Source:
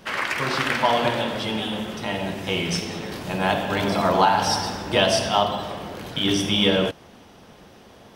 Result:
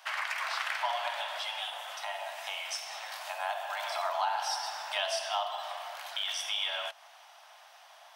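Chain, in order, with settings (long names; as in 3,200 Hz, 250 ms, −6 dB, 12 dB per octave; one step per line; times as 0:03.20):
Butterworth high-pass 640 Hz 72 dB per octave
0:01.69–0:03.84: dynamic equaliser 2,900 Hz, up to −5 dB, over −38 dBFS, Q 0.71
downward compressor 2 to 1, threshold −33 dBFS, peak gain reduction 11 dB
level −2.5 dB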